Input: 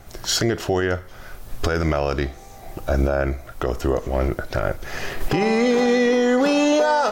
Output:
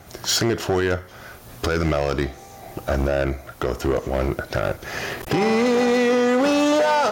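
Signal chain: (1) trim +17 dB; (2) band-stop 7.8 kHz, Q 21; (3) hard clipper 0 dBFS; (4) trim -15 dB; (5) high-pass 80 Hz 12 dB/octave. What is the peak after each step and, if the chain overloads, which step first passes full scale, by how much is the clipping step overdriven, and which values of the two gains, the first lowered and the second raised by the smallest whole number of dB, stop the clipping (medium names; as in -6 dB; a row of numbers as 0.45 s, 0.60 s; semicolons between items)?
+6.5 dBFS, +7.0 dBFS, 0.0 dBFS, -15.0 dBFS, -9.0 dBFS; step 1, 7.0 dB; step 1 +10 dB, step 4 -8 dB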